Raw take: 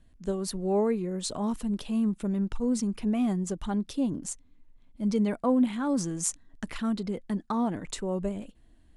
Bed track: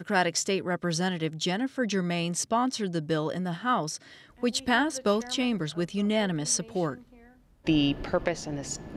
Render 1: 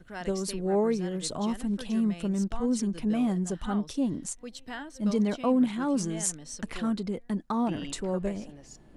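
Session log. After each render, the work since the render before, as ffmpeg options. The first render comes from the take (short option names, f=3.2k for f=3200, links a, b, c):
-filter_complex "[1:a]volume=-15dB[a];[0:a][a]amix=inputs=2:normalize=0"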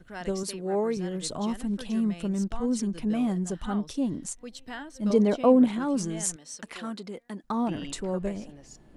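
-filter_complex "[0:a]asettb=1/sr,asplit=3[a][b][c];[a]atrim=end=0.434[d];[b]atrim=start=0.43:end=0.97,asetpts=PTS-STARTPTS,afade=t=in:d=0.004:c=qsin,afade=t=out:st=0.536:d=0.004:c=qsin,highpass=f=250:p=1[e];[c]atrim=start=0.966[f];[d][e]acrossfade=d=0.004:c1=hsin:c2=qsin[g];[g][f]acrossfade=d=0.004:c1=qsin:c2=hsin,asettb=1/sr,asplit=3[h][i][j];[h]atrim=end=5.104[k];[i]atrim=start=5.1:end=5.79,asetpts=PTS-STARTPTS,afade=t=in:d=0.004:c=qsin,afade=t=out:st=0.686:d=0.004:c=qsin,equalizer=f=490:t=o:w=1.8:g=8.5[l];[j]atrim=start=5.786[m];[k][l]acrossfade=d=0.004:c1=hsin:c2=qsin[n];[n][m]acrossfade=d=0.004:c1=qsin:c2=hsin,asettb=1/sr,asplit=3[o][p][q];[o]atrim=end=6.364[r];[p]atrim=start=6.36:end=7.44,asetpts=PTS-STARTPTS,afade=t=in:d=0.004:c=qsin,afade=t=out:st=1.076:d=0.004:c=qsin,highpass=f=510:p=1[s];[q]atrim=start=7.436[t];[r][s]acrossfade=d=0.004:c1=hsin:c2=qsin[u];[u][t]acrossfade=d=0.004:c1=qsin:c2=hsin"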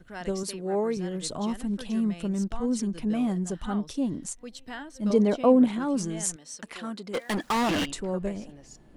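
-filter_complex "[0:a]asplit=3[a][b][c];[a]afade=t=out:st=7.13:d=0.02[d];[b]asplit=2[e][f];[f]highpass=f=720:p=1,volume=34dB,asoftclip=type=tanh:threshold=-19.5dB[g];[e][g]amix=inputs=2:normalize=0,lowpass=f=7.9k:p=1,volume=-6dB,afade=t=in:st=7.13:d=0.02,afade=t=out:st=7.84:d=0.02[h];[c]afade=t=in:st=7.84:d=0.02[i];[d][h][i]amix=inputs=3:normalize=0"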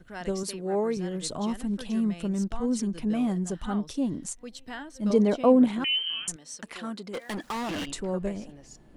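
-filter_complex "[0:a]asettb=1/sr,asplit=3[a][b][c];[a]atrim=end=5.844[d];[b]atrim=start=5.84:end=6.28,asetpts=PTS-STARTPTS,afade=t=in:d=0.004:c=qsin,afade=t=out:st=0.436:d=0.004:c=qsin,lowpass=f=2.8k:t=q:w=0.5098,lowpass=f=2.8k:t=q:w=0.6013,lowpass=f=2.8k:t=q:w=0.9,lowpass=f=2.8k:t=q:w=2.563,afreqshift=-3300[e];[c]atrim=start=6.276[f];[d][e]acrossfade=d=0.004:c1=hsin:c2=qsin[g];[g][f]acrossfade=d=0.004:c1=qsin:c2=hsin,asettb=1/sr,asplit=3[h][i][j];[h]atrim=end=7.034[k];[i]atrim=start=7.03:end=7.87,asetpts=PTS-STARTPTS,afade=t=in:d=0.004:c=qsin,afade=t=out:st=0.836:d=0.004:c=qsin,acompressor=threshold=-35dB:ratio=2:attack=3.2:release=140:knee=1:detection=peak[l];[j]atrim=start=7.866[m];[k][l]acrossfade=d=0.004:c1=hsin:c2=qsin[n];[n][m]acrossfade=d=0.004:c1=qsin:c2=hsin"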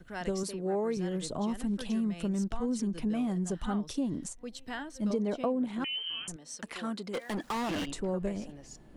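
-filter_complex "[0:a]acrossover=split=640|1000[a][b][c];[c]alimiter=level_in=4dB:limit=-24dB:level=0:latency=1:release=372,volume=-4dB[d];[a][b][d]amix=inputs=3:normalize=0,acompressor=threshold=-27dB:ratio=10"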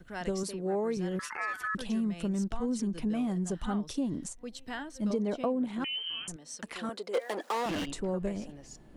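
-filter_complex "[0:a]asettb=1/sr,asplit=3[a][b][c];[a]atrim=end=1.194[d];[b]atrim=start=1.19:end=1.75,asetpts=PTS-STARTPTS,afade=t=in:d=0.004:c=qsin,afade=t=out:st=0.556:d=0.004:c=qsin,aeval=exprs='val(0)*sin(2*PI*1500*n/s)':c=same[e];[c]atrim=start=1.746[f];[d][e]acrossfade=d=0.004:c1=hsin:c2=qsin[g];[g][f]acrossfade=d=0.004:c1=qsin:c2=hsin,asettb=1/sr,asplit=3[h][i][j];[h]atrim=end=6.894[k];[i]atrim=start=6.89:end=7.66,asetpts=PTS-STARTPTS,afade=t=in:d=0.004:c=qsin,afade=t=out:st=0.766:d=0.004:c=qsin,highpass=f=480:t=q:w=2.3[l];[j]atrim=start=7.656[m];[k][l]acrossfade=d=0.004:c1=hsin:c2=qsin[n];[n][m]acrossfade=d=0.004:c1=qsin:c2=hsin"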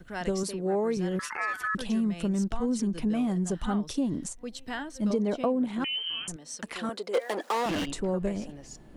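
-af "volume=3.5dB"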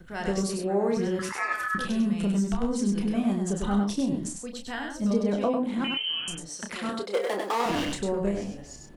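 -filter_complex "[0:a]asplit=2[a][b];[b]adelay=30,volume=-6dB[c];[a][c]amix=inputs=2:normalize=0,asplit=2[d][e];[e]aecho=0:1:99:0.596[f];[d][f]amix=inputs=2:normalize=0"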